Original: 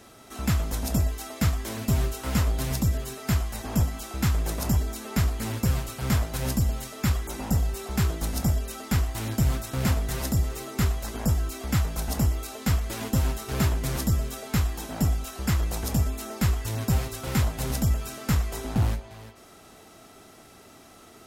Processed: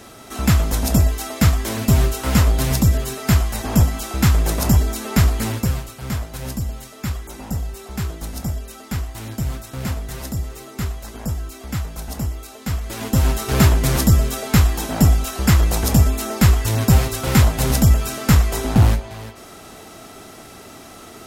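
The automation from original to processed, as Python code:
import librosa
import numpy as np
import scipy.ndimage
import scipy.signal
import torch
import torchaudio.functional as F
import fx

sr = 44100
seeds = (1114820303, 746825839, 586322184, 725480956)

y = fx.gain(x, sr, db=fx.line((5.4, 9.0), (5.93, -1.0), (12.65, -1.0), (13.4, 10.5)))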